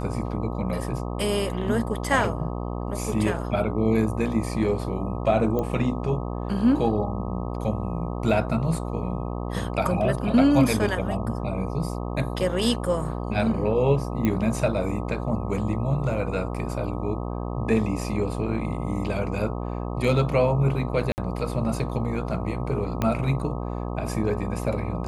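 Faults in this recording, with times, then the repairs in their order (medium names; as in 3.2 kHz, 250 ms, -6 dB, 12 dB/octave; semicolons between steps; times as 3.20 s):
buzz 60 Hz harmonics 21 -30 dBFS
5.59 s: pop -16 dBFS
14.25 s: pop -12 dBFS
21.12–21.18 s: dropout 59 ms
23.02 s: pop -11 dBFS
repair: de-click; de-hum 60 Hz, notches 21; interpolate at 21.12 s, 59 ms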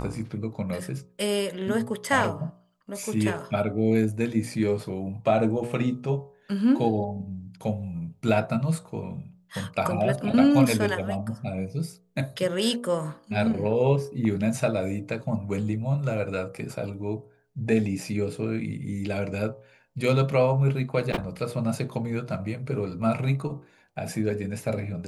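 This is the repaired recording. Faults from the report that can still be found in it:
23.02 s: pop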